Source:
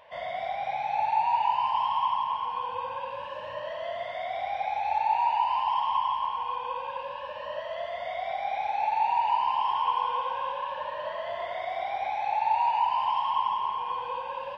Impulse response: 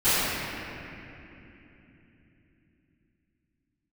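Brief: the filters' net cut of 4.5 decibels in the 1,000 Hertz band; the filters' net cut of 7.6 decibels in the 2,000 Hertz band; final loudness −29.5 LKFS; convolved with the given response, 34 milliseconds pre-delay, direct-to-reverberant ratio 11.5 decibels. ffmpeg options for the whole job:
-filter_complex "[0:a]equalizer=frequency=1000:width_type=o:gain=-3.5,equalizer=frequency=2000:width_type=o:gain=-9,asplit=2[link_01][link_02];[1:a]atrim=start_sample=2205,adelay=34[link_03];[link_02][link_03]afir=irnorm=-1:irlink=0,volume=-30.5dB[link_04];[link_01][link_04]amix=inputs=2:normalize=0,volume=3.5dB"

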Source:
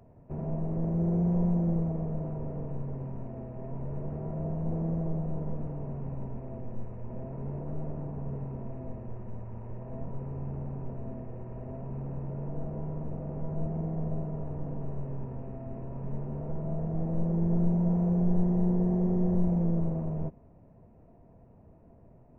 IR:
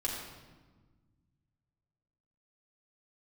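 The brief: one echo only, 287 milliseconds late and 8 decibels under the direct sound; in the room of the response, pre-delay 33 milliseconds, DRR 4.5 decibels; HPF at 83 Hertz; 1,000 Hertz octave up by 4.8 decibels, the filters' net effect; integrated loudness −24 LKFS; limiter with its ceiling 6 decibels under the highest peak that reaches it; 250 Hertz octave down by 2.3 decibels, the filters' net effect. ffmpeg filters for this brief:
-filter_complex "[0:a]highpass=83,equalizer=frequency=250:width_type=o:gain=-4.5,equalizer=frequency=1000:width_type=o:gain=7,alimiter=level_in=1dB:limit=-24dB:level=0:latency=1,volume=-1dB,aecho=1:1:287:0.398,asplit=2[link_01][link_02];[1:a]atrim=start_sample=2205,adelay=33[link_03];[link_02][link_03]afir=irnorm=-1:irlink=0,volume=-8.5dB[link_04];[link_01][link_04]amix=inputs=2:normalize=0,volume=10.5dB"

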